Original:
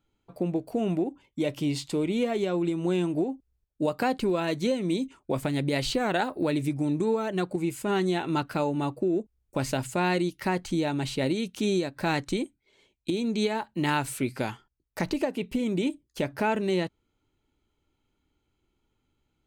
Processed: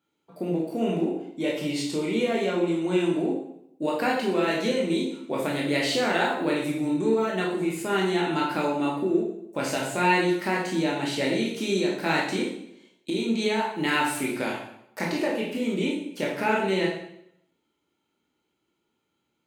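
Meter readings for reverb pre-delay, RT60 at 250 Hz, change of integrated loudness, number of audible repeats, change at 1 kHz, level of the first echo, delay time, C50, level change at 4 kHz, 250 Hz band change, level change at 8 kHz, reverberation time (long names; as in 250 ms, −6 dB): 15 ms, 0.80 s, +2.5 dB, no echo audible, +3.5 dB, no echo audible, no echo audible, 3.5 dB, +4.0 dB, +1.5 dB, +3.0 dB, 0.75 s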